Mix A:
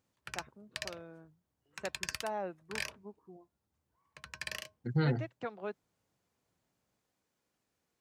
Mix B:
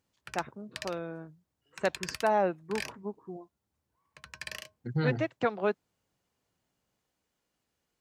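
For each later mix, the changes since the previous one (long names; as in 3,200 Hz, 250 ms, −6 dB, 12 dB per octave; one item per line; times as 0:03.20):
first voice +11.5 dB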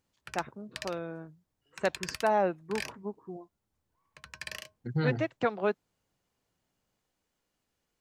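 master: remove high-pass filter 43 Hz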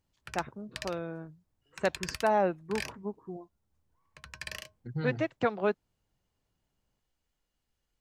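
second voice −7.0 dB
master: add low-shelf EQ 81 Hz +11 dB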